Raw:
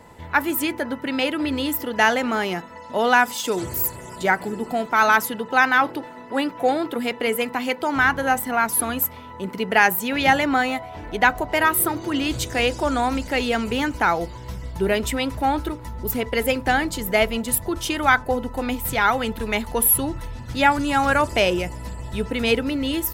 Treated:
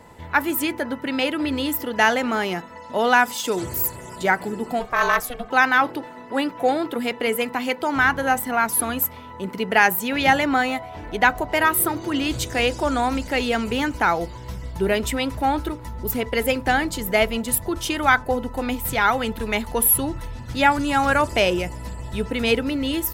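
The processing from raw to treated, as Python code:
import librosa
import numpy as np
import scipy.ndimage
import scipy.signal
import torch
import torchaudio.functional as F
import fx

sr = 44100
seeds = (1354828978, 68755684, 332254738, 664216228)

y = fx.ring_mod(x, sr, carrier_hz=240.0, at=(4.79, 5.49), fade=0.02)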